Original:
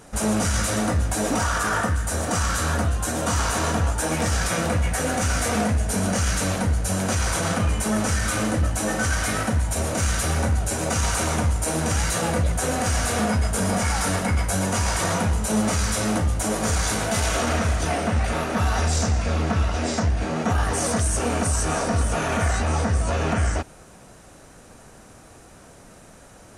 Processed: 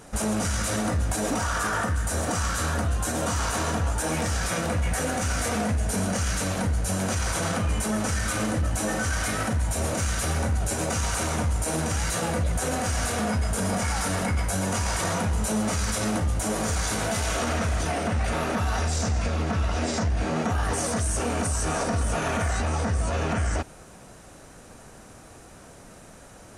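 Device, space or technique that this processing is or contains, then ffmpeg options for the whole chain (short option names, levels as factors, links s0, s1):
clipper into limiter: -af "asoftclip=type=hard:threshold=0.237,alimiter=limit=0.133:level=0:latency=1"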